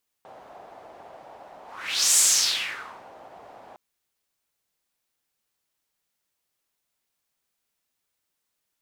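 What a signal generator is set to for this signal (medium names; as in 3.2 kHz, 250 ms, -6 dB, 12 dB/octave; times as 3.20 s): whoosh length 3.51 s, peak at 1.92 s, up 0.57 s, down 0.98 s, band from 720 Hz, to 7.7 kHz, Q 3.2, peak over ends 29 dB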